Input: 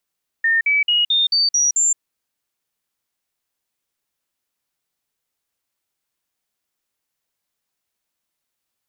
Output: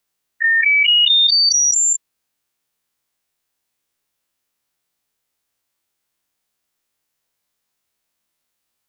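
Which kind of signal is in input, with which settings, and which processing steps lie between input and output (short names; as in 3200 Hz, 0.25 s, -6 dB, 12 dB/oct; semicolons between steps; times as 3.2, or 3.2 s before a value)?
stepped sine 1820 Hz up, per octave 3, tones 7, 0.17 s, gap 0.05 s -13.5 dBFS
spectral dilation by 60 ms; dynamic EQ 3200 Hz, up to +4 dB, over -26 dBFS, Q 0.76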